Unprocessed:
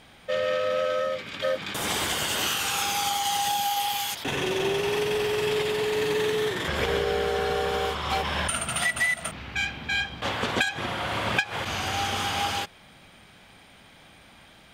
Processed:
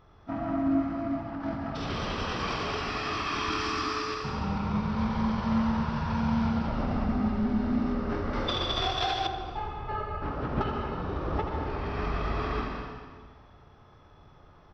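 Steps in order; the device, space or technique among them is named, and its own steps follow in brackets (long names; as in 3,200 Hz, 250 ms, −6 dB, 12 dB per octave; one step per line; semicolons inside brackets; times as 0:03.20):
monster voice (pitch shifter −11 semitones; formants moved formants −5.5 semitones; low-shelf EQ 160 Hz +7.5 dB; single-tap delay 81 ms −7 dB; convolution reverb RT60 1.6 s, pre-delay 115 ms, DRR 1.5 dB)
0:08.33–0:09.27: high-shelf EQ 2,200 Hz +11.5 dB
level −7.5 dB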